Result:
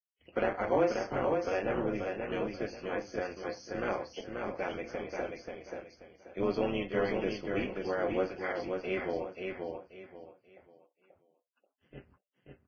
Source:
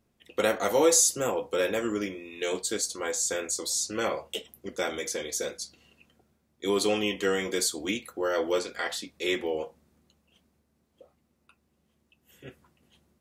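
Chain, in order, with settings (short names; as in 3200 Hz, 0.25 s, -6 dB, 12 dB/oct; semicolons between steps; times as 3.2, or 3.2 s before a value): gate -58 dBFS, range -26 dB; low shelf 86 Hz +9 dB; soft clip -13 dBFS, distortion -23 dB; AM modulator 180 Hz, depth 65%; Butterworth band-stop 3600 Hz, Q 3; air absorption 380 m; on a send: feedback echo 0.556 s, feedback 29%, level -4.5 dB; on the sum: speed mistake 24 fps film run at 25 fps; Vorbis 16 kbps 16000 Hz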